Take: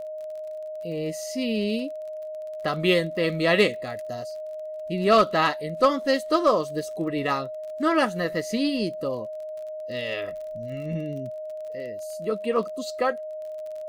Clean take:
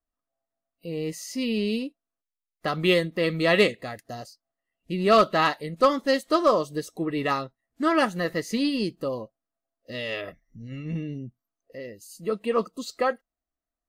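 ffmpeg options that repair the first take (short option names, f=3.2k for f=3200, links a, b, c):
-af "adeclick=t=4,bandreject=f=620:w=30"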